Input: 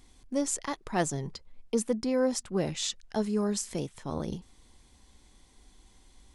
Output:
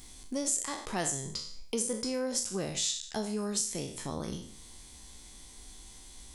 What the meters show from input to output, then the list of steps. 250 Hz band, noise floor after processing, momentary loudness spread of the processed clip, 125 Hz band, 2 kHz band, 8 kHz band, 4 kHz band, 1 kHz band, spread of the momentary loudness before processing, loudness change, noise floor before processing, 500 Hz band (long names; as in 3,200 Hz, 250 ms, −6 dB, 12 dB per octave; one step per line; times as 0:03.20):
−5.5 dB, −51 dBFS, 19 LU, −5.0 dB, −2.0 dB, +4.0 dB, +2.5 dB, −4.0 dB, 9 LU, −1.5 dB, −61 dBFS, −5.5 dB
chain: peak hold with a decay on every bin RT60 0.48 s
high-shelf EQ 3,900 Hz +12 dB
downward compressor 2 to 1, threshold −41 dBFS, peak gain reduction 13.5 dB
level +3 dB